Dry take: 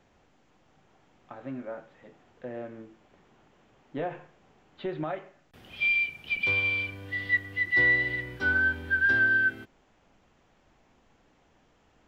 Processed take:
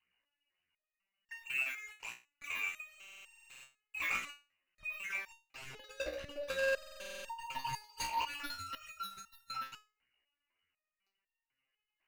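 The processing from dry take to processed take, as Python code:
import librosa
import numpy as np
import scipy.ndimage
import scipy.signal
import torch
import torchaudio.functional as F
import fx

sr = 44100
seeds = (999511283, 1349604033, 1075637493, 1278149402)

p1 = x + fx.echo_single(x, sr, ms=123, db=-13.0, dry=0)
p2 = fx.level_steps(p1, sr, step_db=14)
p3 = fx.peak_eq(p2, sr, hz=210.0, db=-7.5, octaves=1.0)
p4 = fx.freq_invert(p3, sr, carrier_hz=2900)
p5 = fx.leveller(p4, sr, passes=5)
p6 = fx.phaser_stages(p5, sr, stages=12, low_hz=130.0, high_hz=1000.0, hz=3.4, feedback_pct=40)
p7 = fx.over_compress(p6, sr, threshold_db=-32.0, ratio=-0.5)
p8 = fx.buffer_glitch(p7, sr, at_s=(2.89, 6.55), block=2048, repeats=15)
p9 = fx.resonator_held(p8, sr, hz=4.0, low_hz=61.0, high_hz=920.0)
y = p9 * librosa.db_to_amplitude(3.5)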